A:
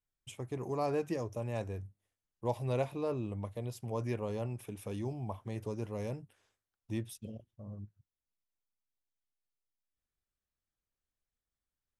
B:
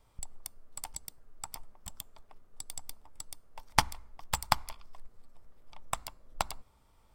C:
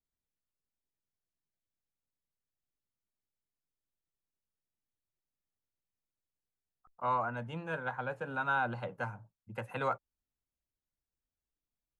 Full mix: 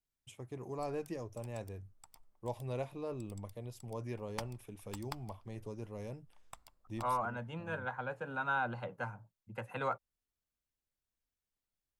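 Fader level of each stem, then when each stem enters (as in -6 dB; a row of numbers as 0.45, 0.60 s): -6.0, -17.5, -2.5 dB; 0.00, 0.60, 0.00 s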